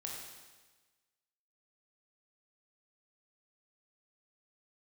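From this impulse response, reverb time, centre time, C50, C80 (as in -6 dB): 1.3 s, 69 ms, 1.0 dB, 3.0 dB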